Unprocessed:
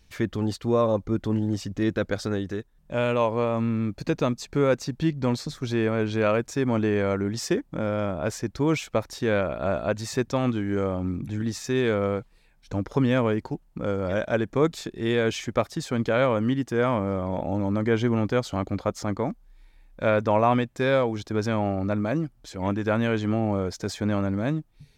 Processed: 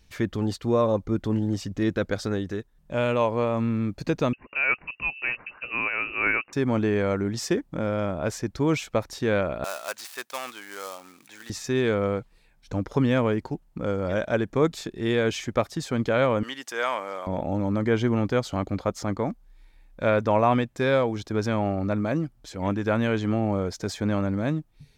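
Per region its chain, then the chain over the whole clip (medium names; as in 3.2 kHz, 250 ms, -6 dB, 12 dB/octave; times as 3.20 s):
4.33–6.53 s: tilt EQ +3 dB/octave + frequency inversion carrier 2.8 kHz
9.64–11.50 s: dead-time distortion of 0.086 ms + high-pass 1 kHz + treble shelf 5.5 kHz +7 dB
16.43–17.27 s: high-pass 710 Hz + treble shelf 2.3 kHz +8.5 dB
whole clip: none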